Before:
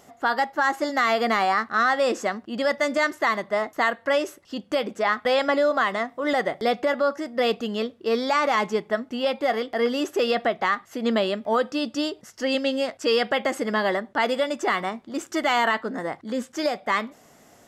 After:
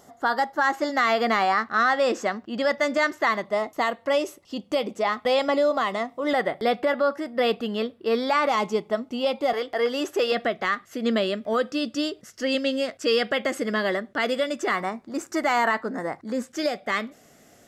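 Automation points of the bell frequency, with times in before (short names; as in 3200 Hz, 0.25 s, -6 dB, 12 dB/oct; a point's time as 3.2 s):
bell -10.5 dB 0.42 oct
2500 Hz
from 0.61 s 10000 Hz
from 3.45 s 1600 Hz
from 6.31 s 6400 Hz
from 8.49 s 1700 Hz
from 9.53 s 220 Hz
from 10.32 s 880 Hz
from 14.71 s 3200 Hz
from 16.48 s 960 Hz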